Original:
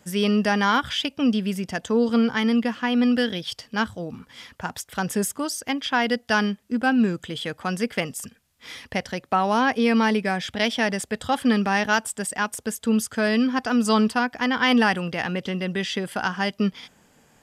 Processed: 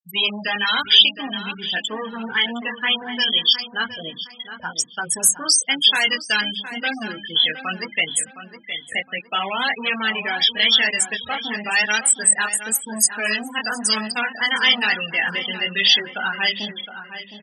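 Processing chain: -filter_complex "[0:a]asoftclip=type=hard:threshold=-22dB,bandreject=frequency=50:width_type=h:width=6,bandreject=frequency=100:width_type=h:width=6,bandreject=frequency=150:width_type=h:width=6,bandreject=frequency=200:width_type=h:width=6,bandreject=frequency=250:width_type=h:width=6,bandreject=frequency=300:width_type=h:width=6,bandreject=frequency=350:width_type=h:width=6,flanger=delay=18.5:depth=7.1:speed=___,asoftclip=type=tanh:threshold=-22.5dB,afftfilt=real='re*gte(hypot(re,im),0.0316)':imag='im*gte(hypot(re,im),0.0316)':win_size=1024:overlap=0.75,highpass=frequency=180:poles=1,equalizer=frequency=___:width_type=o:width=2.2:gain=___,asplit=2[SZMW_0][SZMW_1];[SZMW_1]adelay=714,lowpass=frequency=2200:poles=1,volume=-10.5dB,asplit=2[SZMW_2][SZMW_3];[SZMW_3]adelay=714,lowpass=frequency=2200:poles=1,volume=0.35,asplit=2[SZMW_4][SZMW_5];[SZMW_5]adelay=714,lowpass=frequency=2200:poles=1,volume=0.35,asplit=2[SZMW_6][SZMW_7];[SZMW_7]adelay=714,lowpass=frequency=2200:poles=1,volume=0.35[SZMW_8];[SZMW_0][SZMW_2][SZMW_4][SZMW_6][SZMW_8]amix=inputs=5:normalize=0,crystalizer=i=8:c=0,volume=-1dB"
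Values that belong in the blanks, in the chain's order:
1, 3000, 11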